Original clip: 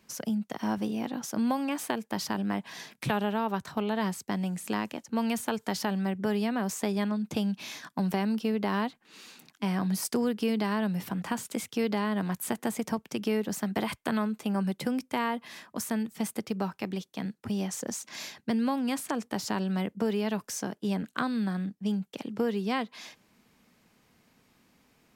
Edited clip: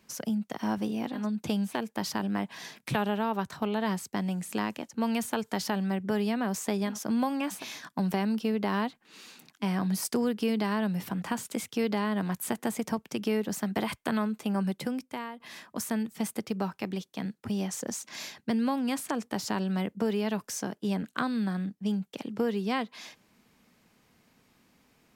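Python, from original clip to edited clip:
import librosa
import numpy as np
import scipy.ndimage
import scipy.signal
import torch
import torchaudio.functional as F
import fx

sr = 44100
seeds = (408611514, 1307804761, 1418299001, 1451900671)

y = fx.edit(x, sr, fx.swap(start_s=1.19, length_s=0.67, other_s=7.06, other_length_s=0.52, crossfade_s=0.16),
    fx.fade_out_to(start_s=14.69, length_s=0.71, floor_db=-14.5), tone=tone)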